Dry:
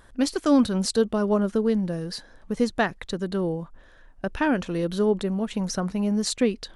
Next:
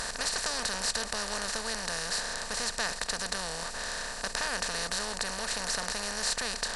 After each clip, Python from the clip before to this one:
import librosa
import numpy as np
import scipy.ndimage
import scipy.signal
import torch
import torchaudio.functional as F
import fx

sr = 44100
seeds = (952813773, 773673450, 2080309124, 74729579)

y = fx.bin_compress(x, sr, power=0.2)
y = fx.tone_stack(y, sr, knobs='10-0-10')
y = y * 10.0 ** (-5.5 / 20.0)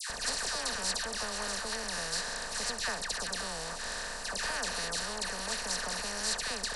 y = fx.dispersion(x, sr, late='lows', ms=100.0, hz=1500.0)
y = y * 10.0 ** (-2.0 / 20.0)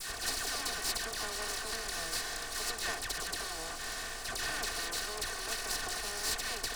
y = fx.lower_of_two(x, sr, delay_ms=2.7)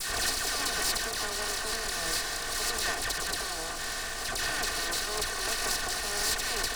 y = x + 10.0 ** (-11.5 / 20.0) * np.pad(x, (int(191 * sr / 1000.0), 0))[:len(x)]
y = fx.pre_swell(y, sr, db_per_s=28.0)
y = y * 10.0 ** (4.5 / 20.0)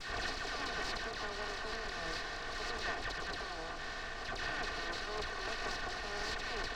y = fx.air_absorb(x, sr, metres=200.0)
y = y * 10.0 ** (-4.5 / 20.0)